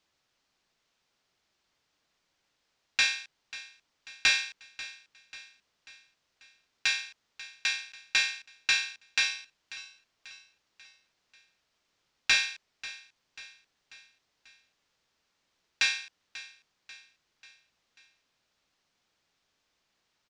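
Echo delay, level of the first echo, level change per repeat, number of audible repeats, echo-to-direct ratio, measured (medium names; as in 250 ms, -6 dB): 540 ms, -17.0 dB, -6.0 dB, 4, -15.5 dB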